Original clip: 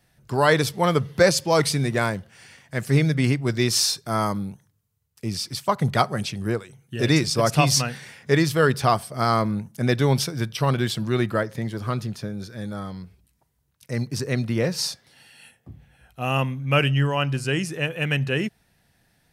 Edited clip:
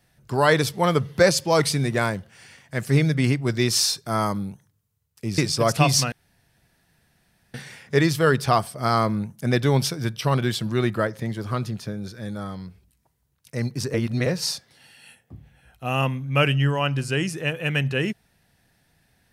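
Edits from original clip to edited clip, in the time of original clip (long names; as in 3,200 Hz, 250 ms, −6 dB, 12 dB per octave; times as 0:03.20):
0:05.38–0:07.16: remove
0:07.90: splice in room tone 1.42 s
0:14.30–0:14.62: reverse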